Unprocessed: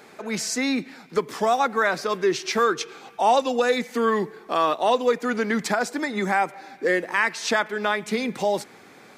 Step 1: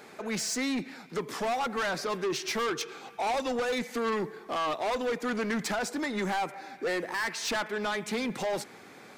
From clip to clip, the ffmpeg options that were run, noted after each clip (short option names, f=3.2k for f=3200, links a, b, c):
-af "asoftclip=type=tanh:threshold=-25dB,volume=-1.5dB"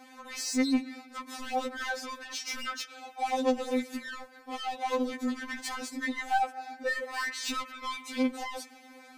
-af "afftfilt=real='re*3.46*eq(mod(b,12),0)':imag='im*3.46*eq(mod(b,12),0)':win_size=2048:overlap=0.75"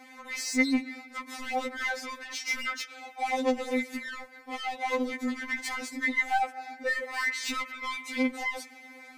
-af "equalizer=f=2.1k:w=7.2:g=12.5"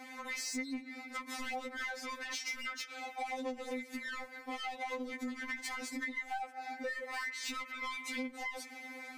-af "acompressor=threshold=-39dB:ratio=6,volume=1.5dB"